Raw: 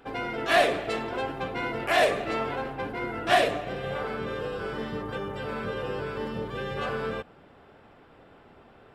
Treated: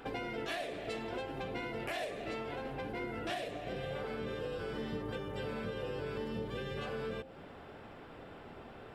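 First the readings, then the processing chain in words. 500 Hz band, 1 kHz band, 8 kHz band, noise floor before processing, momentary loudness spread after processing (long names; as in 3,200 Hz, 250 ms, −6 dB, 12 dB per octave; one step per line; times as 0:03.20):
−10.0 dB, −14.0 dB, −12.5 dB, −55 dBFS, 12 LU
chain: downward compressor 10 to 1, threshold −38 dBFS, peak gain reduction 21.5 dB
dynamic equaliser 1,200 Hz, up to −7 dB, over −58 dBFS, Q 1.2
hum removal 66.48 Hz, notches 13
level +4 dB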